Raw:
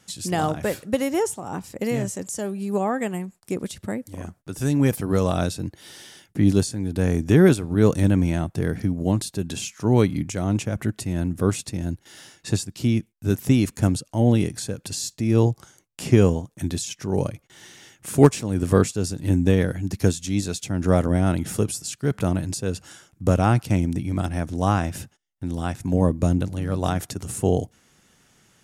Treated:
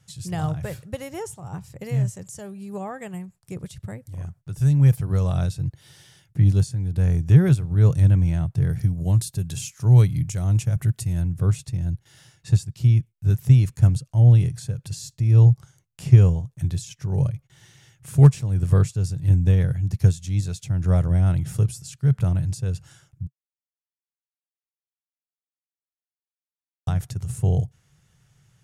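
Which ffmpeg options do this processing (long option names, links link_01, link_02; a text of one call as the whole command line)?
ffmpeg -i in.wav -filter_complex "[0:a]asettb=1/sr,asplit=3[link_01][link_02][link_03];[link_01]atrim=end=8.704[link_04];[link_02]atrim=start=8.7:end=11.22,asetpts=PTS-STARTPTS,afade=type=in:duration=0.004:curve=qsin,afade=type=out:start_time=2.516:duration=0.004:curve=qsin,highshelf=frequency=6000:gain=12[link_05];[link_03]atrim=start=11.216[link_06];[link_04][link_05]acrossfade=duration=0.004:curve1=hsin:curve2=qsin[link_07];[link_07][link_06]acrossfade=duration=0.004:curve1=qsin:curve2=hsin,asplit=3[link_08][link_09][link_10];[link_08]atrim=end=23.27,asetpts=PTS-STARTPTS,afade=type=out:start_time=23.266:duration=0.004:curve=hsin[link_11];[link_09]atrim=start=23.27:end=26.87,asetpts=PTS-STARTPTS,volume=0[link_12];[link_10]atrim=start=26.87,asetpts=PTS-STARTPTS,afade=type=in:duration=0.004:curve=hsin[link_13];[link_11][link_12][link_13]concat=n=3:v=0:a=1,lowshelf=frequency=180:width_type=q:width=3:gain=10,volume=-8dB" out.wav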